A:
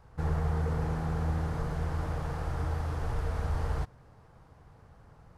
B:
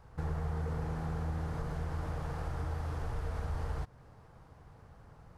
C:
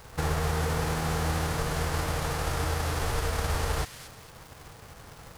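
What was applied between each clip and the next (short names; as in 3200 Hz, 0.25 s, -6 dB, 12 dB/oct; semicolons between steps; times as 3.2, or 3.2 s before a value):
compressor 2:1, threshold -36 dBFS, peak gain reduction 7 dB
spectral whitening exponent 0.6; thin delay 0.23 s, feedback 34%, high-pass 2200 Hz, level -7.5 dB; crackle 250/s -46 dBFS; gain +7 dB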